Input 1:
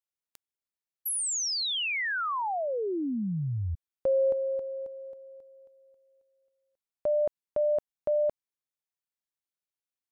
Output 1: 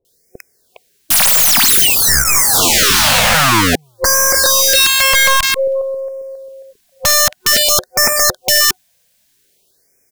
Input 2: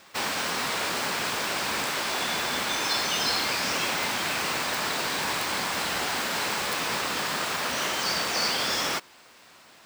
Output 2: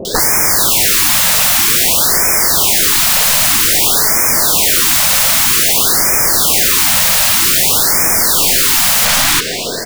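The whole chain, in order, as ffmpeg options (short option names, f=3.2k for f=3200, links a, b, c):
-filter_complex "[0:a]superequalizer=7b=2.51:8b=1.41:9b=0.398:10b=0.282,asplit=2[a][b];[b]acompressor=threshold=-39dB:ratio=8:attack=1.7:release=94:knee=1:detection=rms,volume=-1dB[c];[a][c]amix=inputs=2:normalize=0,acrossover=split=620|2000[d][e][f];[f]adelay=50[g];[e]adelay=410[h];[d][h][g]amix=inputs=3:normalize=0,apsyclip=24.5dB,aeval=exprs='1.06*(cos(1*acos(clip(val(0)/1.06,-1,1)))-cos(1*PI/2))+0.00841*(cos(2*acos(clip(val(0)/1.06,-1,1)))-cos(2*PI/2))+0.00668*(cos(6*acos(clip(val(0)/1.06,-1,1)))-cos(6*PI/2))+0.0531*(cos(8*acos(clip(val(0)/1.06,-1,1)))-cos(8*PI/2))':c=same,aeval=exprs='(mod(3.76*val(0)+1,2)-1)/3.76':c=same,afftfilt=real='re*(1-between(b*sr/1024,320*pow(3600/320,0.5+0.5*sin(2*PI*0.52*pts/sr))/1.41,320*pow(3600/320,0.5+0.5*sin(2*PI*0.52*pts/sr))*1.41))':imag='im*(1-between(b*sr/1024,320*pow(3600/320,0.5+0.5*sin(2*PI*0.52*pts/sr))/1.41,320*pow(3600/320,0.5+0.5*sin(2*PI*0.52*pts/sr))*1.41))':win_size=1024:overlap=0.75,volume=5.5dB"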